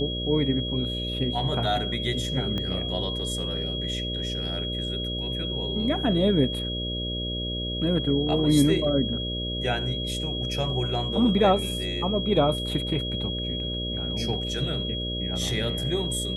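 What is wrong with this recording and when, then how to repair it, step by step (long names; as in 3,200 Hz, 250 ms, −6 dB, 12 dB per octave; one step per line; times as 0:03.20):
mains buzz 60 Hz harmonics 10 −32 dBFS
whistle 3,300 Hz −31 dBFS
0:02.58: click −18 dBFS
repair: click removal
hum removal 60 Hz, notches 10
notch filter 3,300 Hz, Q 30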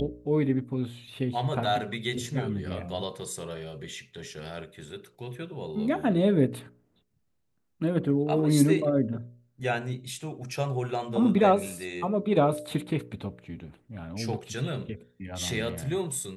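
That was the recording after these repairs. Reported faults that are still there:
0:02.58: click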